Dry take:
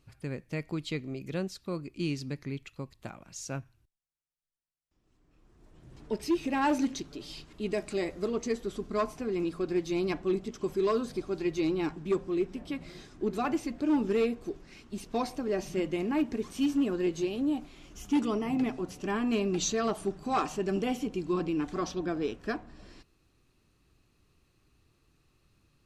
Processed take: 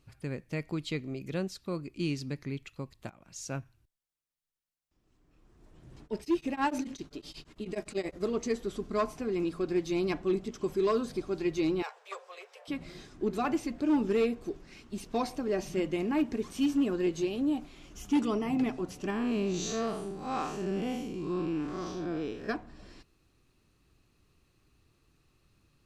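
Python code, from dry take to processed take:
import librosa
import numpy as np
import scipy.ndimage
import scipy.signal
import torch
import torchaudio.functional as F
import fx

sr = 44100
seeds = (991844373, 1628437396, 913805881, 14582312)

y = fx.tremolo_abs(x, sr, hz=fx.line((5.96, 5.5), (8.19, 12.0)), at=(5.96, 8.19), fade=0.02)
y = fx.steep_highpass(y, sr, hz=460.0, slope=96, at=(11.82, 12.68))
y = fx.spec_blur(y, sr, span_ms=156.0, at=(19.1, 22.49))
y = fx.edit(y, sr, fx.fade_in_from(start_s=3.1, length_s=0.45, curve='qsin', floor_db=-15.5), tone=tone)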